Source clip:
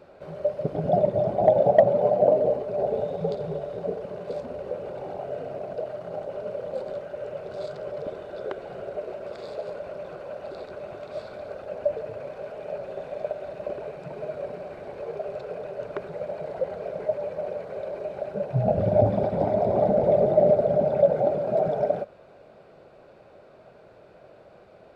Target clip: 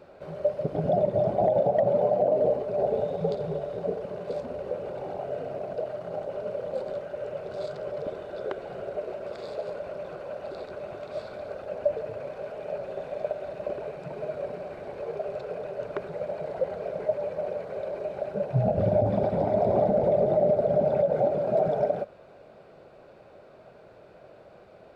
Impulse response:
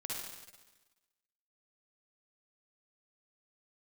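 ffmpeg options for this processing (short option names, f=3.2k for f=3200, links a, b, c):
-af "alimiter=limit=-14dB:level=0:latency=1:release=98"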